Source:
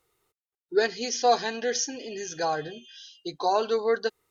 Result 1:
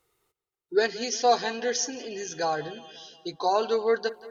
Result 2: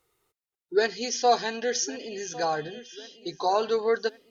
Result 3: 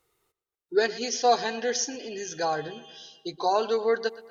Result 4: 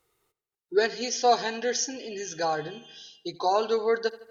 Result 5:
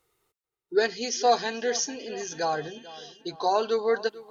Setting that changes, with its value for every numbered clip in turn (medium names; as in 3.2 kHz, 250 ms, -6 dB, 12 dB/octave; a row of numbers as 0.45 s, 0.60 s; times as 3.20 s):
filtered feedback delay, time: 177 ms, 1102 ms, 120 ms, 79 ms, 441 ms